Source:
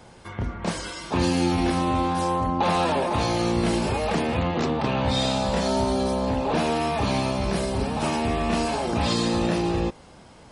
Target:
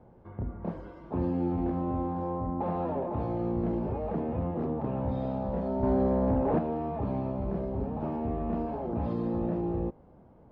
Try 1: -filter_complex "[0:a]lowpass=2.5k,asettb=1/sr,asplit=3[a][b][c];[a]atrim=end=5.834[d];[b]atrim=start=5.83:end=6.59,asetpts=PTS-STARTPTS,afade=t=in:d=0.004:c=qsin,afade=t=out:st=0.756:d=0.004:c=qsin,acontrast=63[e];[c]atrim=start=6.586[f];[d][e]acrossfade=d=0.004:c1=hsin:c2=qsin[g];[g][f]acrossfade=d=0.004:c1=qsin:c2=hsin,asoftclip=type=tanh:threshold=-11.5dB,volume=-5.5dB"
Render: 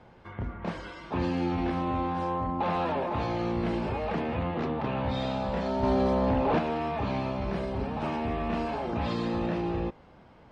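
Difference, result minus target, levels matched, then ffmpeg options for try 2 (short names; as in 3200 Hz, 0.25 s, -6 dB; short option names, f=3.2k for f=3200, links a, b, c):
2000 Hz band +13.5 dB
-filter_complex "[0:a]lowpass=680,asettb=1/sr,asplit=3[a][b][c];[a]atrim=end=5.834[d];[b]atrim=start=5.83:end=6.59,asetpts=PTS-STARTPTS,afade=t=in:d=0.004:c=qsin,afade=t=out:st=0.756:d=0.004:c=qsin,acontrast=63[e];[c]atrim=start=6.586[f];[d][e]acrossfade=d=0.004:c1=hsin:c2=qsin[g];[g][f]acrossfade=d=0.004:c1=qsin:c2=hsin,asoftclip=type=tanh:threshold=-11.5dB,volume=-5.5dB"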